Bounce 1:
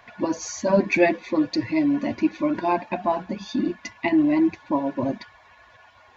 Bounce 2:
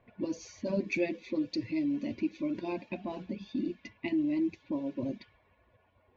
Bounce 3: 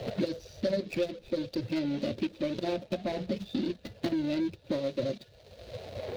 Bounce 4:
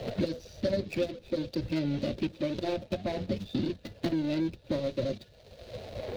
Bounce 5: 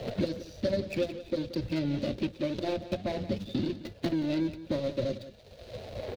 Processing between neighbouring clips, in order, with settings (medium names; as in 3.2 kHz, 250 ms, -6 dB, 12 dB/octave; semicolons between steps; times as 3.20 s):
level-controlled noise filter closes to 1.1 kHz, open at -18 dBFS; high-order bell 1.1 kHz -13 dB; compression 1.5:1, threshold -33 dBFS, peak gain reduction 7 dB; trim -4.5 dB
median filter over 41 samples; FFT filter 140 Hz 0 dB, 280 Hz -11 dB, 530 Hz +5 dB, 1 kHz -7 dB, 2.6 kHz +1 dB, 3.9 kHz +11 dB, 7.6 kHz -1 dB; three bands compressed up and down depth 100%; trim +7 dB
octave divider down 1 oct, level -5 dB
delay 177 ms -14.5 dB